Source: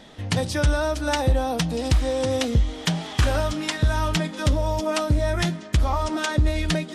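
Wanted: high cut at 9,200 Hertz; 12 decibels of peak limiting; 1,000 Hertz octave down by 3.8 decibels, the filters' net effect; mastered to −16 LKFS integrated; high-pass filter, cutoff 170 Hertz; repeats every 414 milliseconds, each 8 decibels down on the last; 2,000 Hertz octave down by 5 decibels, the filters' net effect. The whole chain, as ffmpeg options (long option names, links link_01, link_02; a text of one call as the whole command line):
ffmpeg -i in.wav -af "highpass=170,lowpass=9200,equalizer=frequency=1000:width_type=o:gain=-3.5,equalizer=frequency=2000:width_type=o:gain=-5.5,alimiter=limit=-22dB:level=0:latency=1,aecho=1:1:414|828|1242|1656|2070:0.398|0.159|0.0637|0.0255|0.0102,volume=14dB" out.wav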